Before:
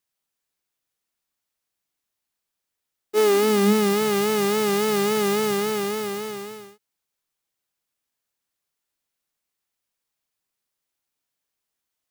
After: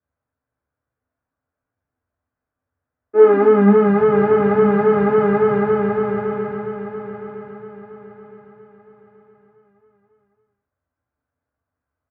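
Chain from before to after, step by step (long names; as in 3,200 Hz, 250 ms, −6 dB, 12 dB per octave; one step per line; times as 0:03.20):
low-pass filter 1,600 Hz 24 dB per octave
repeating echo 965 ms, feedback 35%, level −10 dB
convolution reverb, pre-delay 3 ms, DRR −4.5 dB
level −7 dB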